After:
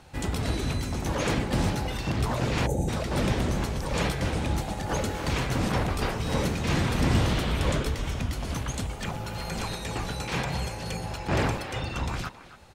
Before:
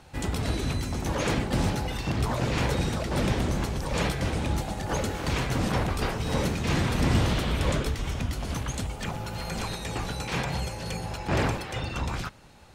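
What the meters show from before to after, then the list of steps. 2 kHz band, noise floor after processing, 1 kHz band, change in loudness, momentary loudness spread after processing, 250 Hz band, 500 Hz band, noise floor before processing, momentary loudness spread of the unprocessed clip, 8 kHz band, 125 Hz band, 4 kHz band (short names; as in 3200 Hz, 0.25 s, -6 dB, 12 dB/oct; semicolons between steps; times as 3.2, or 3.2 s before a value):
0.0 dB, -40 dBFS, 0.0 dB, 0.0 dB, 6 LU, 0.0 dB, 0.0 dB, -39 dBFS, 6 LU, 0.0 dB, 0.0 dB, 0.0 dB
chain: speakerphone echo 0.27 s, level -13 dB; spectral gain 2.67–2.89, 890–5900 Hz -22 dB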